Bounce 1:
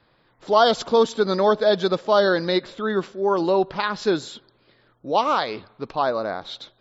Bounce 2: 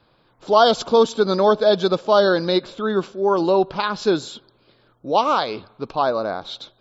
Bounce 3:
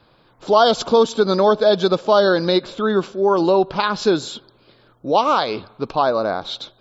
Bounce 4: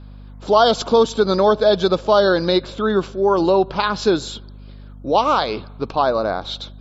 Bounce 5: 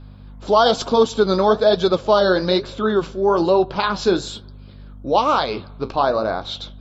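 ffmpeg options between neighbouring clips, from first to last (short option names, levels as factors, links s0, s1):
-af "equalizer=f=1900:w=4.9:g=-10.5,volume=1.33"
-af "acompressor=threshold=0.0891:ratio=1.5,volume=1.68"
-af "aeval=exprs='val(0)+0.0141*(sin(2*PI*50*n/s)+sin(2*PI*2*50*n/s)/2+sin(2*PI*3*50*n/s)/3+sin(2*PI*4*50*n/s)/4+sin(2*PI*5*50*n/s)/5)':c=same"
-af "flanger=delay=7.3:depth=9.3:regen=-58:speed=1.1:shape=sinusoidal,volume=1.5"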